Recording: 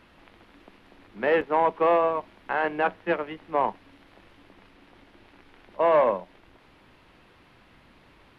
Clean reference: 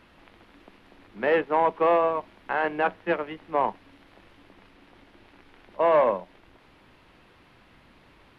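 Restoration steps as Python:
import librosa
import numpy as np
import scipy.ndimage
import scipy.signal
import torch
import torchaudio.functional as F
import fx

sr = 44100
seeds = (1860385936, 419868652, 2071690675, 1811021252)

y = fx.fix_interpolate(x, sr, at_s=(1.41,), length_ms=3.8)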